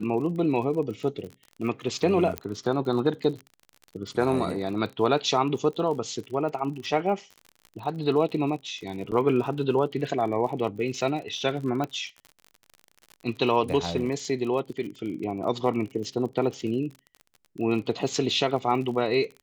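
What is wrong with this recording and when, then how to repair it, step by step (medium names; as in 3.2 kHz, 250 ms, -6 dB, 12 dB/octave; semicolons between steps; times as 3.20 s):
crackle 46 per s -35 dBFS
2.38 s: pop -13 dBFS
9.11–9.12 s: dropout 8.5 ms
11.84 s: pop -17 dBFS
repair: de-click; interpolate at 9.11 s, 8.5 ms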